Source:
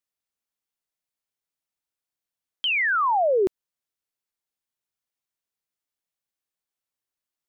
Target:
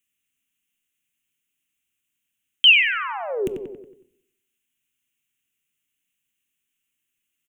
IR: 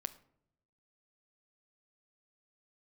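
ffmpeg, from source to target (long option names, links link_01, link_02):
-filter_complex "[0:a]firequalizer=gain_entry='entry(110,0);entry(230,5);entry(620,-16);entry(1400,-4);entry(2800,12);entry(4500,-15);entry(6500,4)':delay=0.05:min_phase=1,asplit=2[link_01][link_02];[link_02]adelay=92,lowpass=frequency=3100:poles=1,volume=-7.5dB,asplit=2[link_03][link_04];[link_04]adelay=92,lowpass=frequency=3100:poles=1,volume=0.49,asplit=2[link_05][link_06];[link_06]adelay=92,lowpass=frequency=3100:poles=1,volume=0.49,asplit=2[link_07][link_08];[link_08]adelay=92,lowpass=frequency=3100:poles=1,volume=0.49,asplit=2[link_09][link_10];[link_10]adelay=92,lowpass=frequency=3100:poles=1,volume=0.49,asplit=2[link_11][link_12];[link_12]adelay=92,lowpass=frequency=3100:poles=1,volume=0.49[link_13];[link_01][link_03][link_05][link_07][link_09][link_11][link_13]amix=inputs=7:normalize=0,asplit=2[link_14][link_15];[1:a]atrim=start_sample=2205[link_16];[link_15][link_16]afir=irnorm=-1:irlink=0,volume=11.5dB[link_17];[link_14][link_17]amix=inputs=2:normalize=0,acrossover=split=230|3000[link_18][link_19][link_20];[link_19]acompressor=threshold=-21dB:ratio=3[link_21];[link_18][link_21][link_20]amix=inputs=3:normalize=0,volume=-5.5dB"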